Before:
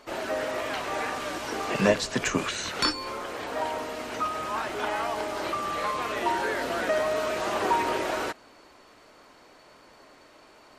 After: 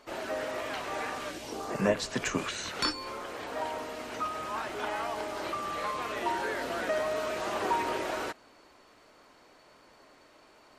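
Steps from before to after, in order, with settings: 1.30–1.97 s: peaking EQ 890 Hz -> 5.4 kHz -13 dB 0.95 oct; trim -4.5 dB

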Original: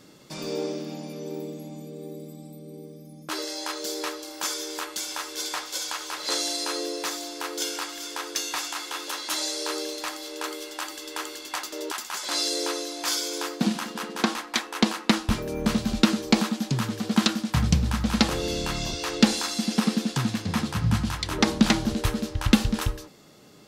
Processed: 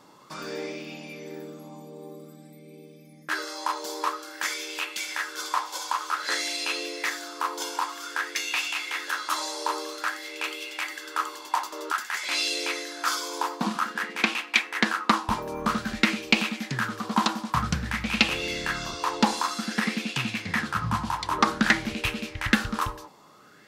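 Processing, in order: bass shelf 86 Hz -7 dB; sweeping bell 0.52 Hz 940–2600 Hz +18 dB; trim -5 dB

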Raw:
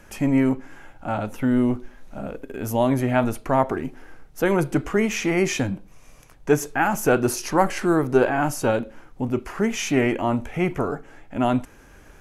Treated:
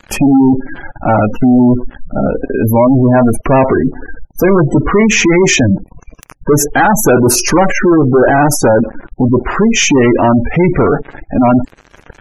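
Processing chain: waveshaping leveller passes 5; spectral gate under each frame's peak -20 dB strong; trim +1.5 dB

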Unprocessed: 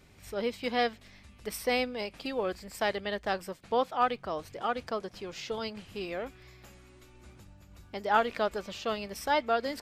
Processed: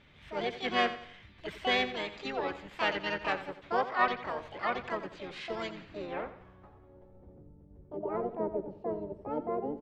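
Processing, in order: low-pass sweep 2.2 kHz -> 380 Hz, 5.65–7.49 s; harmony voices -12 st -15 dB, -4 st -7 dB, +7 st -2 dB; feedback delay 87 ms, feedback 39%, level -13 dB; trim -5.5 dB

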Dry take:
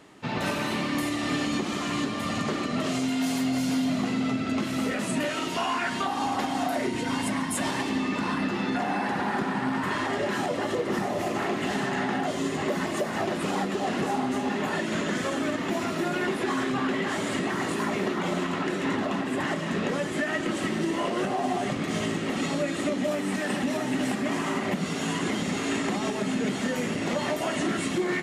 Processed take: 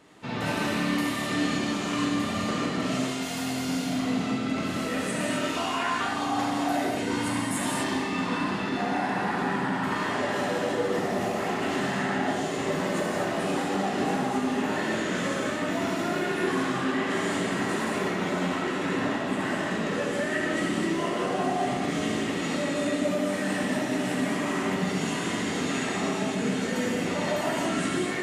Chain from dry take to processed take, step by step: gated-style reverb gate 280 ms flat, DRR -3.5 dB; trim -4.5 dB

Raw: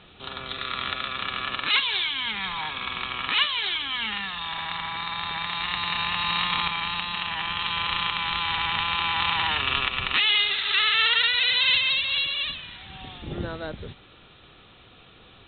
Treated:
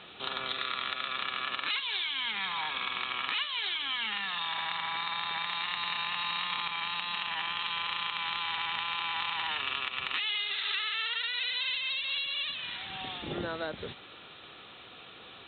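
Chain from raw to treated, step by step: high-pass 400 Hz 6 dB/octave; compression 6:1, threshold -34 dBFS, peak gain reduction 16 dB; trim +3.5 dB

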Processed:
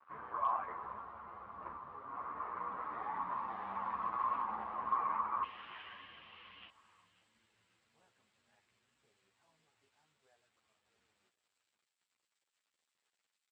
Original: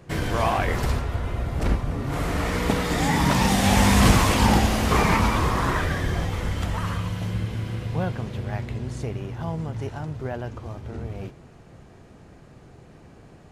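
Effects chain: local Wiener filter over 9 samples; peak limiter -14 dBFS, peak gain reduction 10 dB; AM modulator 120 Hz, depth 50%; crackle 320 per s -37 dBFS; bit crusher 7-bit; band-pass filter 1.1 kHz, Q 7.9, from 5.43 s 2.9 kHz, from 6.69 s 7.8 kHz; hard clipper -26 dBFS, distortion -33 dB; distance through air 380 m; feedback delay 536 ms, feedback 43%, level -20.5 dB; three-phase chorus; trim +6 dB

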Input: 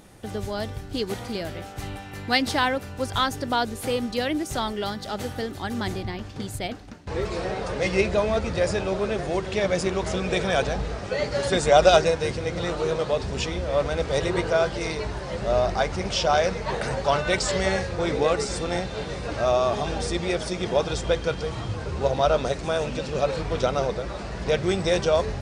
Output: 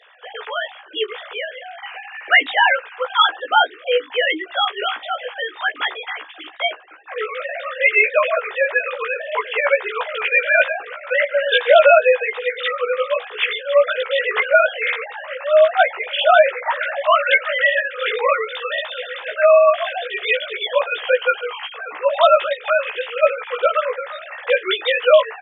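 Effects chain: formants replaced by sine waves; high-pass 1.2 kHz 12 dB/octave; doubling 16 ms -3 dB; on a send at -17 dB: reverberation RT60 0.15 s, pre-delay 3 ms; on the sum: loudness maximiser +17 dB; trim -1 dB

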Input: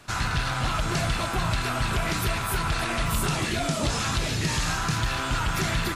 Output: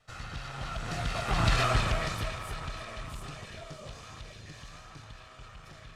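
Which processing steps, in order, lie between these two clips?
comb filter that takes the minimum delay 1.6 ms; Doppler pass-by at 1.60 s, 14 m/s, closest 3 m; distance through air 52 m; trim +3.5 dB

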